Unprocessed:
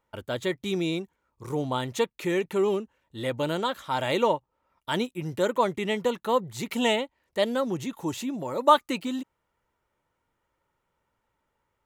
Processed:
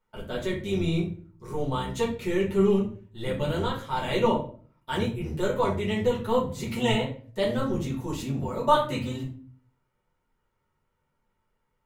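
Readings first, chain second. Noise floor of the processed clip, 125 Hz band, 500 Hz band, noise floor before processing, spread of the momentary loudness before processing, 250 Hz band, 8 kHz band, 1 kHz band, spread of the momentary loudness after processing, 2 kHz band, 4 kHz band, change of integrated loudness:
-76 dBFS, +6.5 dB, 0.0 dB, -79 dBFS, 9 LU, +1.5 dB, -3.0 dB, -2.0 dB, 11 LU, -2.0 dB, -2.0 dB, 0.0 dB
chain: octave divider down 1 oct, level -1 dB; simulated room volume 33 m³, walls mixed, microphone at 1 m; trim -8 dB

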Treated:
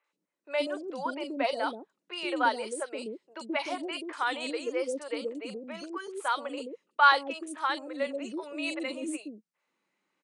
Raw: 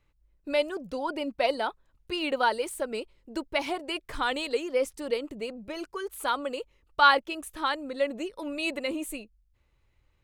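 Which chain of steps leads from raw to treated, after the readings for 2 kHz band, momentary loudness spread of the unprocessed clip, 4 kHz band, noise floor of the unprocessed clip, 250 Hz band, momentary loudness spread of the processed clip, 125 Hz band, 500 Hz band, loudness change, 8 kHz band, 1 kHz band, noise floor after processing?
-1.0 dB, 12 LU, -3.5 dB, -70 dBFS, -1.5 dB, 12 LU, no reading, -3.5 dB, -2.0 dB, -1.5 dB, -1.0 dB, -84 dBFS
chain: Chebyshev band-pass 180–9600 Hz, order 5; three bands offset in time mids, highs, lows 40/130 ms, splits 480/3100 Hz

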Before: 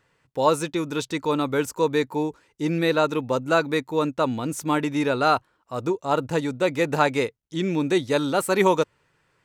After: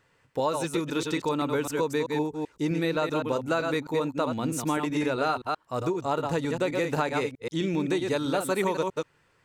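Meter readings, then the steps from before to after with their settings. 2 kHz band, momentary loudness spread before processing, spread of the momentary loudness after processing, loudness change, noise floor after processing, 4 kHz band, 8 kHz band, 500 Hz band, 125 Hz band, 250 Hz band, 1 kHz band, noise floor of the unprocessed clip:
-5.0 dB, 7 LU, 4 LU, -4.5 dB, -66 dBFS, -4.5 dB, -3.0 dB, -4.5 dB, -3.0 dB, -3.5 dB, -5.0 dB, -68 dBFS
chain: chunks repeated in reverse 129 ms, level -6 dB; compression 4:1, threshold -24 dBFS, peak gain reduction 9.5 dB

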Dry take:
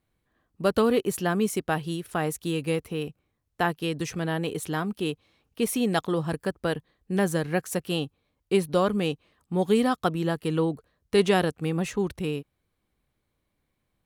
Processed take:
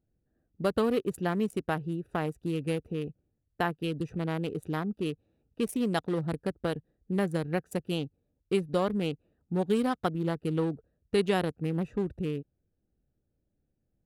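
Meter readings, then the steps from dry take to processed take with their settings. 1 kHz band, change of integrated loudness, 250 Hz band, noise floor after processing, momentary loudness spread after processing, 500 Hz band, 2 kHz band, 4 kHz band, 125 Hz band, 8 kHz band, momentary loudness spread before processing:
-5.0 dB, -4.5 dB, -3.5 dB, -79 dBFS, 7 LU, -4.5 dB, -6.0 dB, -6.5 dB, -2.5 dB, -12.5 dB, 9 LU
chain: local Wiener filter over 41 samples; compression 1.5:1, threshold -30 dBFS, peak gain reduction 5.5 dB

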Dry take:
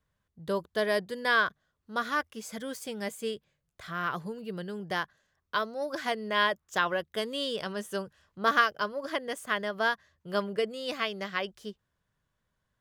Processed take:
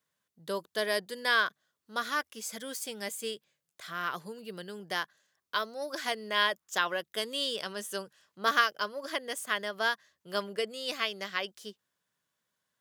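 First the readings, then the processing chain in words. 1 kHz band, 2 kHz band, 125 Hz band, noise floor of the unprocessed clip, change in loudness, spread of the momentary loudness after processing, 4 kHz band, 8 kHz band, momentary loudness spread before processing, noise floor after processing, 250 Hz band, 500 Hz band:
-2.5 dB, -1.0 dB, -8.0 dB, -81 dBFS, -1.5 dB, 13 LU, +2.5 dB, +5.5 dB, 12 LU, under -85 dBFS, -6.5 dB, -3.5 dB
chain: high-pass 210 Hz 12 dB/octave; treble shelf 2.7 kHz +10.5 dB; trim -4 dB

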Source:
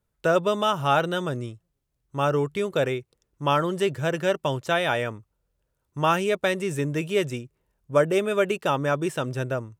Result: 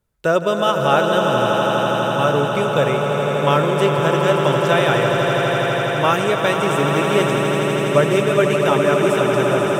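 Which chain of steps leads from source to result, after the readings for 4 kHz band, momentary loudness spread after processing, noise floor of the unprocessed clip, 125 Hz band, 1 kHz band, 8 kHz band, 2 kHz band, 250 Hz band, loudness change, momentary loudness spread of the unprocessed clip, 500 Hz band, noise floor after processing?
+9.0 dB, 3 LU, -77 dBFS, +8.5 dB, +8.5 dB, +8.5 dB, +8.5 dB, +8.5 dB, +8.0 dB, 9 LU, +9.0 dB, -21 dBFS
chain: echo with a slow build-up 82 ms, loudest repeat 8, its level -8.5 dB; trim +4 dB

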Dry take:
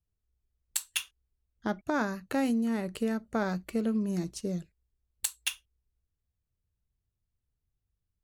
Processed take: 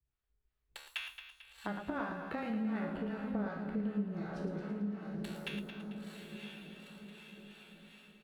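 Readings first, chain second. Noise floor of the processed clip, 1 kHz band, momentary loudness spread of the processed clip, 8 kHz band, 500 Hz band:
-82 dBFS, -6.0 dB, 17 LU, under -20 dB, -7.0 dB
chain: treble shelf 9.4 kHz +7.5 dB; echo that smears into a reverb 931 ms, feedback 42%, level -10 dB; level rider gain up to 4 dB; harmonic tremolo 2.7 Hz, depth 70%, crossover 620 Hz; distance through air 400 m; feedback comb 72 Hz, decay 1.2 s, harmonics all, mix 90%; frequency shift -13 Hz; compression 4:1, threshold -50 dBFS, peak gain reduction 12 dB; feedback delay 111 ms, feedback 55%, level -5.5 dB; tape noise reduction on one side only encoder only; trim +14 dB

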